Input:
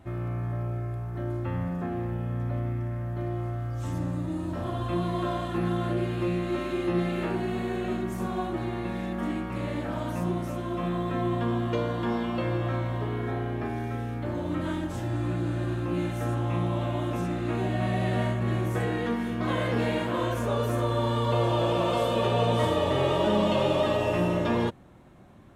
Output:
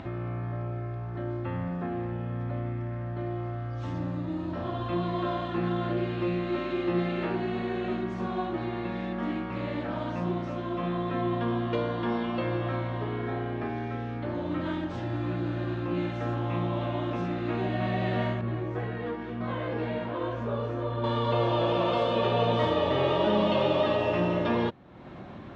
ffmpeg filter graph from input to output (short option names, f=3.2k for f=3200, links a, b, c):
-filter_complex "[0:a]asettb=1/sr,asplit=3[a][b][c];[a]atrim=end=18.414[d];[b]atrim=start=18.41:end=21.04,asetpts=PTS-STARTPTS,afade=t=in:d=0.004:c=qsin,afade=t=out:st=2.626:d=0.004:c=qsin,highshelf=f=2.1k:g=-8.5,flanger=delay=17.5:depth=2:speed=1.9[e];[c]atrim=start=21.036[f];[d][e]acrossfade=d=0.004:c1=hsin:c2=qsin[g];[g][f]acrossfade=d=0.004:c1=qsin:c2=hsin,lowpass=f=4.7k:w=0.5412,lowpass=f=4.7k:w=1.3066,lowshelf=f=74:g=-11,acompressor=mode=upward:threshold=-31dB:ratio=2.5"